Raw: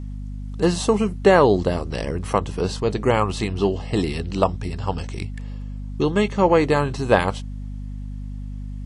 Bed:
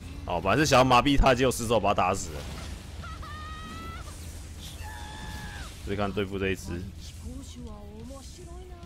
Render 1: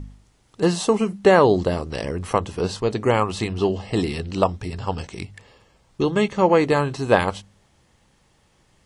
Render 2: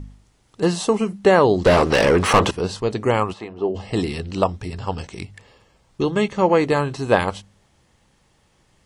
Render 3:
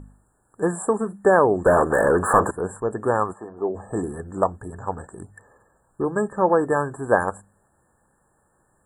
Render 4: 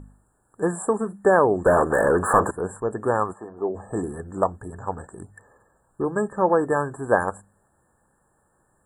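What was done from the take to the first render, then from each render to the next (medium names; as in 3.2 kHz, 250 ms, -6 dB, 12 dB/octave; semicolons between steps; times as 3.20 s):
de-hum 50 Hz, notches 5
1.65–2.51 s: overdrive pedal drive 30 dB, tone 2.5 kHz, clips at -4.5 dBFS; 3.32–3.74 s: band-pass filter 1 kHz -> 420 Hz, Q 1
FFT band-reject 1.8–7.1 kHz; bass shelf 270 Hz -8.5 dB
trim -1 dB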